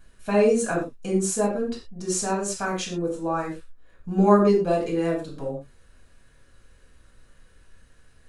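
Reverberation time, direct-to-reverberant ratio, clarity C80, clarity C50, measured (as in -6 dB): no single decay rate, -5.0 dB, 11.0 dB, 6.0 dB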